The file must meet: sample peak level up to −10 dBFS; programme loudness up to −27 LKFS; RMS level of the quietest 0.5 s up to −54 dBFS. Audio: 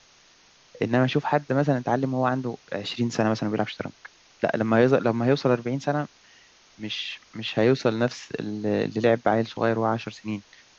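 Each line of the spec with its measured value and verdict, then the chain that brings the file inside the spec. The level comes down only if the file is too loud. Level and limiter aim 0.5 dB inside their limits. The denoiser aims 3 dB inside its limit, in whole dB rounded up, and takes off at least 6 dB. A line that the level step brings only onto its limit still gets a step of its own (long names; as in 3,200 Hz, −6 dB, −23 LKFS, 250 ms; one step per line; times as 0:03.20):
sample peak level −6.0 dBFS: out of spec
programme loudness −25.0 LKFS: out of spec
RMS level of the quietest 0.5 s −57 dBFS: in spec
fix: level −2.5 dB
brickwall limiter −10.5 dBFS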